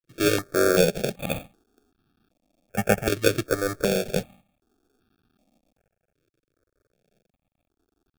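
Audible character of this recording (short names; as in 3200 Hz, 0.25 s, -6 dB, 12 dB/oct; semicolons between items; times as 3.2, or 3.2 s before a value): a quantiser's noise floor 12-bit, dither none; tremolo saw up 0.68 Hz, depth 55%; aliases and images of a low sample rate 1000 Hz, jitter 0%; notches that jump at a steady rate 2.6 Hz 210–2100 Hz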